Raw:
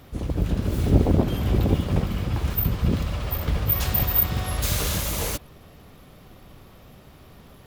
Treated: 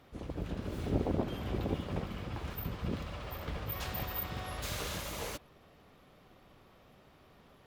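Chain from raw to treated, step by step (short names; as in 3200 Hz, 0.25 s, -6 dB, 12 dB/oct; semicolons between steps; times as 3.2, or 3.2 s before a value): LPF 3500 Hz 6 dB/oct; low shelf 220 Hz -10 dB; gain -7.5 dB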